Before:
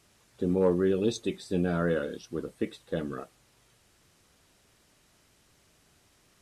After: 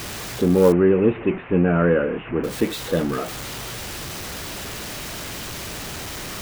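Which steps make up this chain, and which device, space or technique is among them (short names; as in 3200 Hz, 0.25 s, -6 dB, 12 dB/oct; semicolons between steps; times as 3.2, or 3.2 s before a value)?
early CD player with a faulty converter (zero-crossing step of -34.5 dBFS; clock jitter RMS 0.021 ms); 0.72–2.44 steep low-pass 2800 Hz 72 dB/oct; gain +8.5 dB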